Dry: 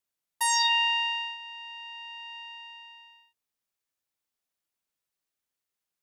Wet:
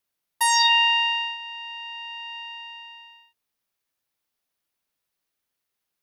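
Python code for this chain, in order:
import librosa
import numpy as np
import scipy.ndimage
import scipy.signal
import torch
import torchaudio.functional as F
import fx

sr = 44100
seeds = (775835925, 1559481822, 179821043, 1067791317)

y = fx.peak_eq(x, sr, hz=7500.0, db=-5.0, octaves=0.5)
y = y * 10.0 ** (6.0 / 20.0)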